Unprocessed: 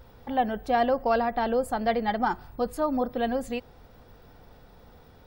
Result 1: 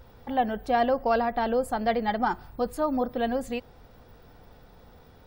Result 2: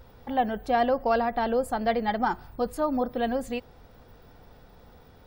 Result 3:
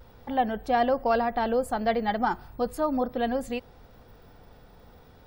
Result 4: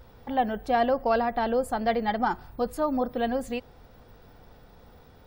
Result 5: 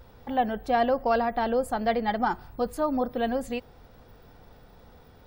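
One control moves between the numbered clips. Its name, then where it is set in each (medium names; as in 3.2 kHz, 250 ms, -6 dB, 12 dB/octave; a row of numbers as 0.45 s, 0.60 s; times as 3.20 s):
vibrato, rate: 9.2 Hz, 6.3 Hz, 0.39 Hz, 3.4 Hz, 2.1 Hz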